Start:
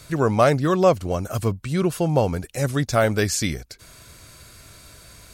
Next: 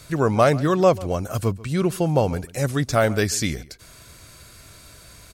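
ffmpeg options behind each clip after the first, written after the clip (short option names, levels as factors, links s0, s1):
-filter_complex "[0:a]asplit=2[s0][s1];[s1]adelay=139.9,volume=0.1,highshelf=f=4000:g=-3.15[s2];[s0][s2]amix=inputs=2:normalize=0"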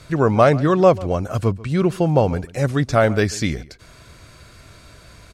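-af "aemphasis=mode=reproduction:type=50fm,volume=1.41"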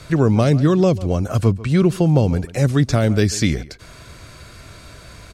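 -filter_complex "[0:a]acrossover=split=370|3000[s0][s1][s2];[s1]acompressor=threshold=0.0355:ratio=6[s3];[s0][s3][s2]amix=inputs=3:normalize=0,volume=1.68"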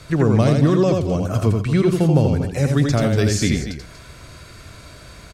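-af "aecho=1:1:84.55|239.1:0.631|0.282,volume=0.794"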